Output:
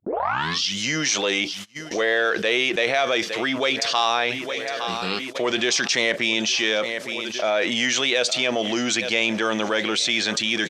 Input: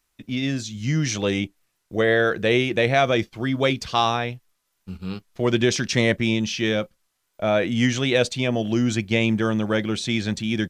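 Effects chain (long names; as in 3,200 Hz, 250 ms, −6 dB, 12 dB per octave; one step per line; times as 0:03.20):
turntable start at the beginning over 0.79 s
repeating echo 861 ms, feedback 59%, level −24 dB
in parallel at −9.5 dB: soft clipping −22.5 dBFS, distortion −8 dB
on the sum: high-pass filter 480 Hz 12 dB per octave
high-shelf EQ 3,100 Hz +7 dB
noise gate −49 dBFS, range −35 dB
low-pass filter 6,800 Hz 12 dB per octave
envelope flattener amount 70%
level −4.5 dB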